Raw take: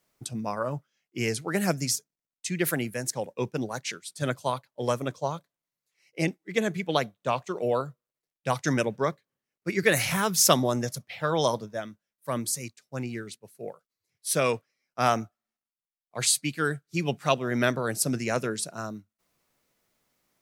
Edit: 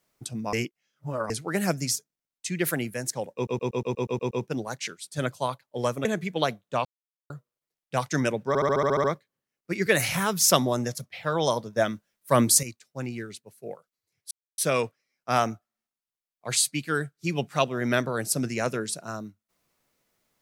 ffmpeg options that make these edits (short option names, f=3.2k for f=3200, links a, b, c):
-filter_complex "[0:a]asplit=25[a][b][c][d][e][f][g][h][i][j][k][l][m][n][o][p][q][r][s][t][u][v][w][x][y];[a]atrim=end=0.532[z];[b]atrim=start=0.528:end=1.302,asetpts=PTS-STARTPTS,areverse[aa];[c]atrim=start=1.298:end=3.472[ab];[d]atrim=start=3.348:end=3.472[ac];[e]atrim=start=3.348:end=3.472[ad];[f]atrim=start=3.348:end=3.472[ae];[g]atrim=start=3.348:end=3.472[af];[h]atrim=start=3.348:end=3.472[ag];[i]atrim=start=3.348:end=3.472[ah];[j]atrim=start=3.348:end=3.472[ai];[k]atrim=start=3.348:end=5.092[aj];[l]atrim=start=6.578:end=7.38,asetpts=PTS-STARTPTS,afade=t=out:st=0.798:d=0.004:c=hsin[ak];[m]atrim=start=7.38:end=7.83,asetpts=PTS-STARTPTS,volume=0[al];[n]atrim=start=7.83:end=9.082,asetpts=PTS-STARTPTS,afade=t=in:d=0.004:c=hsin[am];[o]atrim=start=9.008:end=9.082[an];[p]atrim=start=9.008:end=9.082[ao];[q]atrim=start=9.008:end=9.082[ap];[r]atrim=start=9.008:end=9.082[aq];[s]atrim=start=9.008:end=9.082[ar];[t]atrim=start=9.008:end=9.082[as];[u]atrim=start=9.008:end=9.082[at];[v]atrim=start=9.008:end=11.732[au];[w]atrim=start=11.728:end=12.602,asetpts=PTS-STARTPTS,volume=10dB[av];[x]atrim=start=12.598:end=14.28,asetpts=PTS-STARTPTS,afade=t=out:st=1.678:d=0.004:c=hsin,apad=pad_dur=0.27[aw];[y]atrim=start=14.28,asetpts=PTS-STARTPTS,afade=t=in:d=0.004:c=hsin[ax];[z][aa]acrossfade=d=0.004:c1=hsin:c2=hsin[ay];[ay][ab]acrossfade=d=0.004:c1=hsin:c2=hsin[az];[az][ac]acrossfade=d=0.004:c1=hsin:c2=hsin[ba];[ba][ad]acrossfade=d=0.004:c1=hsin:c2=hsin[bb];[bb][ae]acrossfade=d=0.004:c1=hsin:c2=hsin[bc];[bc][af]acrossfade=d=0.004:c1=hsin:c2=hsin[bd];[bd][ag]acrossfade=d=0.004:c1=hsin:c2=hsin[be];[be][ah]acrossfade=d=0.004:c1=hsin:c2=hsin[bf];[bf][ai]acrossfade=d=0.004:c1=hsin:c2=hsin[bg];[bg][aj]acrossfade=d=0.004:c1=hsin:c2=hsin[bh];[ak][al][am]concat=n=3:v=0:a=1[bi];[bh][bi]acrossfade=d=0.004:c1=hsin:c2=hsin[bj];[bj][an]acrossfade=d=0.004:c1=hsin:c2=hsin[bk];[bk][ao]acrossfade=d=0.004:c1=hsin:c2=hsin[bl];[bl][ap]acrossfade=d=0.004:c1=hsin:c2=hsin[bm];[bm][aq]acrossfade=d=0.004:c1=hsin:c2=hsin[bn];[bn][ar]acrossfade=d=0.004:c1=hsin:c2=hsin[bo];[bo][as]acrossfade=d=0.004:c1=hsin:c2=hsin[bp];[bp][at]acrossfade=d=0.004:c1=hsin:c2=hsin[bq];[bq][au]acrossfade=d=0.004:c1=hsin:c2=hsin[br];[br][av]acrossfade=d=0.004:c1=hsin:c2=hsin[bs];[aw][ax]concat=n=2:v=0:a=1[bt];[bs][bt]acrossfade=d=0.004:c1=hsin:c2=hsin"